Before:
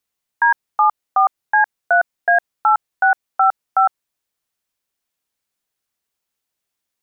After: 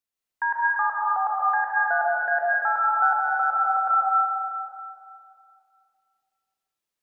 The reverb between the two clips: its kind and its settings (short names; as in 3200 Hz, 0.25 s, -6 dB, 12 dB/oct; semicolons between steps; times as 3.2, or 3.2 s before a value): digital reverb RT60 2.4 s, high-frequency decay 0.75×, pre-delay 95 ms, DRR -5.5 dB; gain -11 dB